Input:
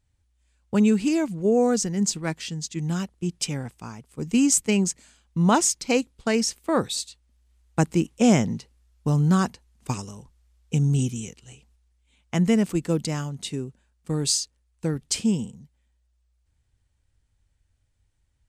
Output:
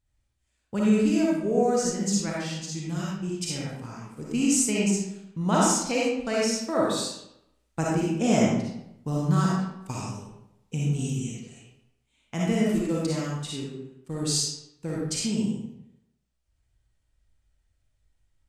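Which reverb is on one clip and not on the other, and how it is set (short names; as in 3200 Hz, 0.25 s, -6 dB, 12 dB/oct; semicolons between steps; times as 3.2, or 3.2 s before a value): digital reverb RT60 0.82 s, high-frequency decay 0.75×, pre-delay 15 ms, DRR -5.5 dB; gain -7.5 dB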